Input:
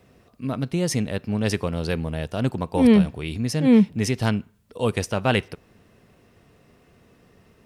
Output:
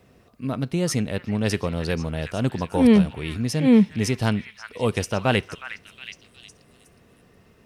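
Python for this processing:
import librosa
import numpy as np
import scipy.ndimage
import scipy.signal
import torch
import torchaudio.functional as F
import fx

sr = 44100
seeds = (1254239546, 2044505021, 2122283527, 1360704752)

y = fx.echo_stepped(x, sr, ms=364, hz=1700.0, octaves=0.7, feedback_pct=70, wet_db=-7.0)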